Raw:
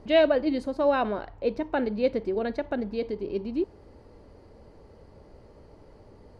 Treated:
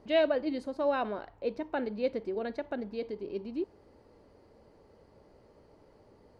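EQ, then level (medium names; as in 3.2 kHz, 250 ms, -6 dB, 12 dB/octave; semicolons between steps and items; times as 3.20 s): bass shelf 98 Hz -11 dB; -5.5 dB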